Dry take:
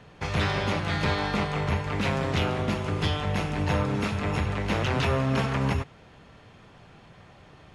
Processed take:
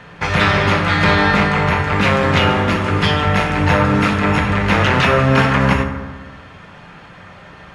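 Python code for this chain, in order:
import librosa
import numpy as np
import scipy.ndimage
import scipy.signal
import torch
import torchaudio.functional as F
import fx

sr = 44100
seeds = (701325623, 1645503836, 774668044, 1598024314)

y = fx.peak_eq(x, sr, hz=1600.0, db=8.5, octaves=1.8)
y = fx.rev_fdn(y, sr, rt60_s=1.4, lf_ratio=1.05, hf_ratio=0.45, size_ms=33.0, drr_db=4.0)
y = y * 10.0 ** (7.0 / 20.0)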